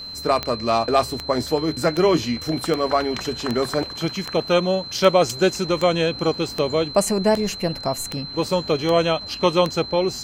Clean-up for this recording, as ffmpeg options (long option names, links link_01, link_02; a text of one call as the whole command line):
ffmpeg -i in.wav -af "adeclick=threshold=4,bandreject=frequency=4100:width=30" out.wav